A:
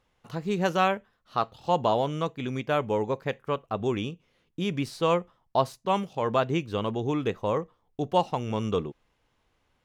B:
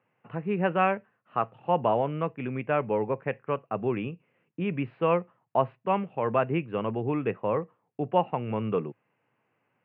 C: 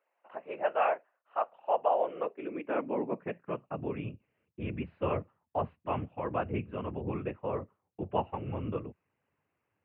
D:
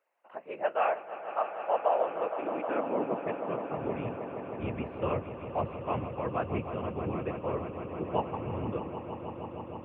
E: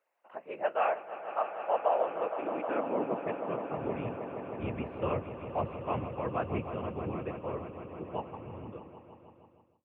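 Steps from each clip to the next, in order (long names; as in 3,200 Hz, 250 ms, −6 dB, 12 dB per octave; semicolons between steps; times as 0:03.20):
Chebyshev band-pass filter 110–2,700 Hz, order 5
random phases in short frames; high-pass filter sweep 640 Hz → 88 Hz, 0:01.80–0:04.15; level −8 dB
echo that builds up and dies away 157 ms, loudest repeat 5, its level −13 dB
fade-out on the ending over 3.27 s; level −1 dB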